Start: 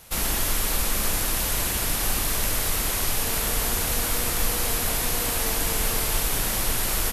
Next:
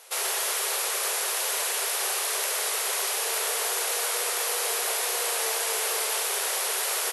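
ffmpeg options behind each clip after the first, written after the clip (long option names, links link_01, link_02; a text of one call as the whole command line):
ffmpeg -i in.wav -af "afftfilt=real='re*between(b*sr/4096,370,12000)':imag='im*between(b*sr/4096,370,12000)':win_size=4096:overlap=0.75" out.wav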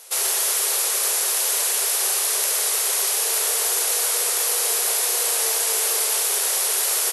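ffmpeg -i in.wav -af "bass=frequency=250:gain=14,treble=frequency=4000:gain=8" out.wav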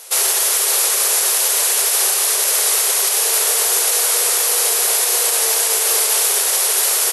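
ffmpeg -i in.wav -af "alimiter=limit=-12.5dB:level=0:latency=1:release=58,volume=6.5dB" out.wav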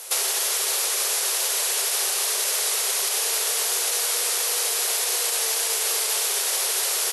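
ffmpeg -i in.wav -filter_complex "[0:a]acrossover=split=860|2300|6500[link_01][link_02][link_03][link_04];[link_01]acompressor=threshold=-38dB:ratio=4[link_05];[link_02]acompressor=threshold=-38dB:ratio=4[link_06];[link_03]acompressor=threshold=-27dB:ratio=4[link_07];[link_04]acompressor=threshold=-27dB:ratio=4[link_08];[link_05][link_06][link_07][link_08]amix=inputs=4:normalize=0" out.wav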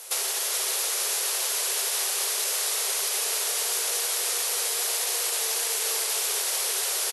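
ffmpeg -i in.wav -af "aecho=1:1:426:0.473,volume=-4dB" out.wav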